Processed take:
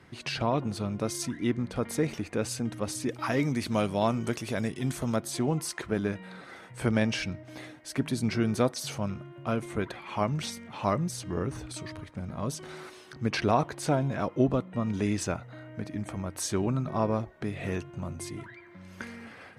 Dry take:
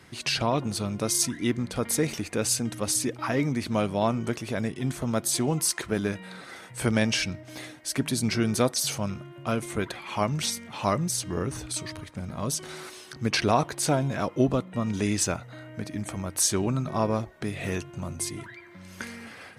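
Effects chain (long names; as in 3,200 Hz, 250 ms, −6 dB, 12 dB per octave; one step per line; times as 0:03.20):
high-shelf EQ 3,700 Hz −12 dB, from 0:03.09 +2.5 dB, from 0:05.16 −11 dB
level −1.5 dB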